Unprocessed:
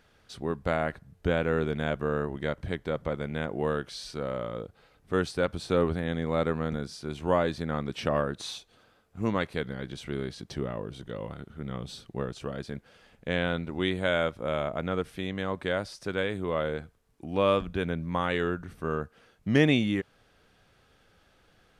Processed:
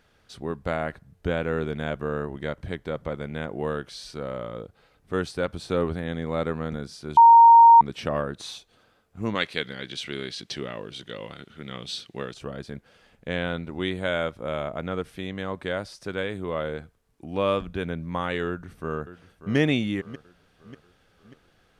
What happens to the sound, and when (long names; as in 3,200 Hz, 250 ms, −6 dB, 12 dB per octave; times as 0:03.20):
0:07.17–0:07.81: beep over 927 Hz −8 dBFS
0:09.35–0:12.34: meter weighting curve D
0:18.47–0:19.56: delay throw 590 ms, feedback 50%, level −13.5 dB